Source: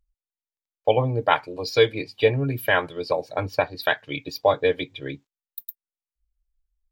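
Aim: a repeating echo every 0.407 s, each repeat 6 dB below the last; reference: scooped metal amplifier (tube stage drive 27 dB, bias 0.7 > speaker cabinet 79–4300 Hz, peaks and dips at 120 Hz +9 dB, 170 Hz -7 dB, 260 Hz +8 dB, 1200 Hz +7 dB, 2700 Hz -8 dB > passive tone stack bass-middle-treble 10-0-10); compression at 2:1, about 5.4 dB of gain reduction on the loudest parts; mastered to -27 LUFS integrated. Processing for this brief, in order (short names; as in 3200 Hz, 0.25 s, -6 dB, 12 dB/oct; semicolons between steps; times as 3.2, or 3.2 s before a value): compressor 2:1, threshold -22 dBFS; feedback echo 0.407 s, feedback 50%, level -6 dB; tube stage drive 27 dB, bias 0.7; speaker cabinet 79–4300 Hz, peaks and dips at 120 Hz +9 dB, 170 Hz -7 dB, 260 Hz +8 dB, 1200 Hz +7 dB, 2700 Hz -8 dB; passive tone stack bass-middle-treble 10-0-10; gain +15.5 dB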